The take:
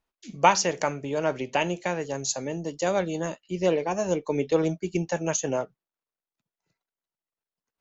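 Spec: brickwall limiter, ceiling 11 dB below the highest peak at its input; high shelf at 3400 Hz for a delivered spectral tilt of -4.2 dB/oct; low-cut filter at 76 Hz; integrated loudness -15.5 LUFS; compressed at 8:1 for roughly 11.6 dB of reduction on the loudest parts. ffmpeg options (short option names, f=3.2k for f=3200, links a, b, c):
-af "highpass=76,highshelf=f=3.4k:g=5.5,acompressor=threshold=-24dB:ratio=8,volume=17.5dB,alimiter=limit=-4dB:level=0:latency=1"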